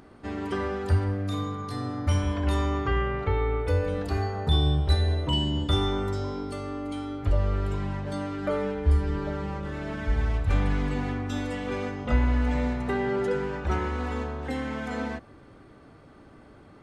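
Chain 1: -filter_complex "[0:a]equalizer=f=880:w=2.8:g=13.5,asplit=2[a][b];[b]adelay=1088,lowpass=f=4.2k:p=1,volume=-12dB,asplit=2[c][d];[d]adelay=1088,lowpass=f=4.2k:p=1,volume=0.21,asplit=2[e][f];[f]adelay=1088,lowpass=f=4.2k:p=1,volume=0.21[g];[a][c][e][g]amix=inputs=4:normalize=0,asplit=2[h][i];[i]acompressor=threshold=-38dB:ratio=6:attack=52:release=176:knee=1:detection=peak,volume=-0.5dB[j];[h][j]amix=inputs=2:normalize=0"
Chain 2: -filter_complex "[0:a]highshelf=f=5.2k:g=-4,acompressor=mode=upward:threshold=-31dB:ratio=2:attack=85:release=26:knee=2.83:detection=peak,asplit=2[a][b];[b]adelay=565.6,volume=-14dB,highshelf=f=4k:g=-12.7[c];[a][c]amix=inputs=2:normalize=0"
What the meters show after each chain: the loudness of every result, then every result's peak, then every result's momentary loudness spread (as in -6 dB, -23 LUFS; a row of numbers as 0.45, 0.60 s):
-24.5, -27.0 LUFS; -8.0, -7.0 dBFS; 6, 7 LU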